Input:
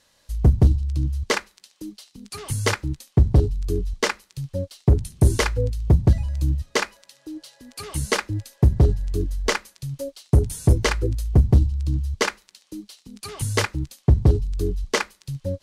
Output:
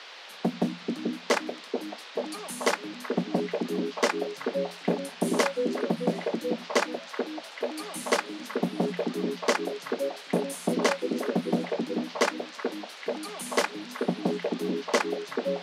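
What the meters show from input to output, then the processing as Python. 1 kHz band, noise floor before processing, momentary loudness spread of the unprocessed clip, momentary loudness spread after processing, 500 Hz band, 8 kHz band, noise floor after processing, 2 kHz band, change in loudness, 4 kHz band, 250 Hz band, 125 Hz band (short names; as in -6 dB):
+0.5 dB, -63 dBFS, 20 LU, 8 LU, +1.0 dB, -5.5 dB, -45 dBFS, -3.0 dB, -7.5 dB, -3.0 dB, -1.0 dB, -20.0 dB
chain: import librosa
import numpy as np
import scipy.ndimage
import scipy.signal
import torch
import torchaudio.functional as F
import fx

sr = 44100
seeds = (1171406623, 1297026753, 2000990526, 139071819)

y = scipy.signal.sosfilt(scipy.signal.cheby1(6, 9, 170.0, 'highpass', fs=sr, output='sos'), x)
y = fx.echo_stepped(y, sr, ms=435, hz=320.0, octaves=0.7, feedback_pct=70, wet_db=0.0)
y = fx.dmg_noise_band(y, sr, seeds[0], low_hz=420.0, high_hz=4400.0, level_db=-49.0)
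y = y * librosa.db_to_amplitude(3.5)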